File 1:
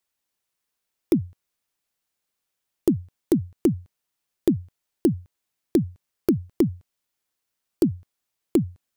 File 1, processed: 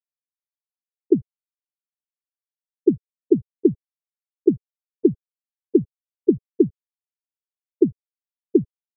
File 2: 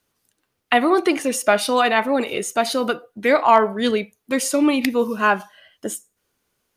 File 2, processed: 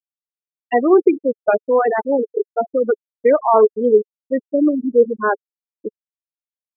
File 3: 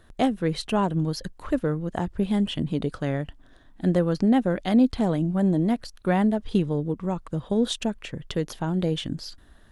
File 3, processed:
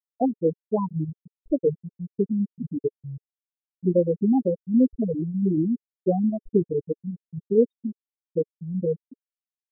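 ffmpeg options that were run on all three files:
-af "afftfilt=real='re*gte(hypot(re,im),0.447)':imag='im*gte(hypot(re,im),0.447)':win_size=1024:overlap=0.75,asuperstop=centerf=3900:order=4:qfactor=0.93,equalizer=f=430:t=o:w=0.72:g=13,volume=-2.5dB"

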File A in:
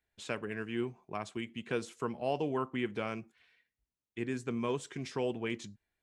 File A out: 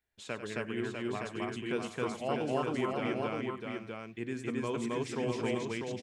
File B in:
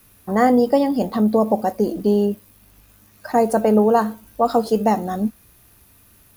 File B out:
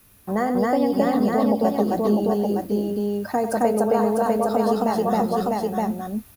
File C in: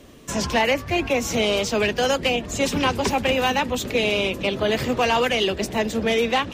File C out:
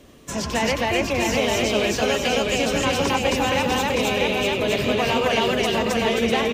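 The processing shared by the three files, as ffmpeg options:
-filter_complex "[0:a]asplit=2[a][b];[b]aecho=0:1:649:0.596[c];[a][c]amix=inputs=2:normalize=0,acompressor=threshold=-17dB:ratio=6,asplit=2[d][e];[e]aecho=0:1:96.21|268.2:0.282|1[f];[d][f]amix=inputs=2:normalize=0,volume=-2dB"

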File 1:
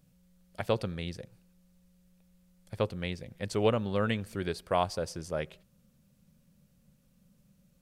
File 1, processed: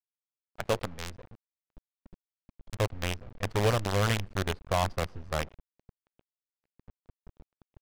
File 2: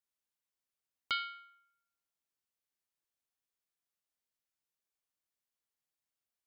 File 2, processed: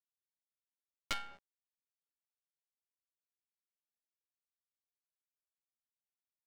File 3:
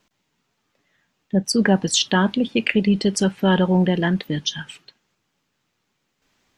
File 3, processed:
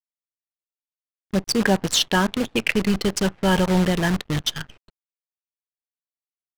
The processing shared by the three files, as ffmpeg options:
-af "asubboost=boost=10.5:cutoff=75,acrusher=bits=5:dc=4:mix=0:aa=0.000001,adynamicsmooth=sensitivity=6:basefreq=1.5k"

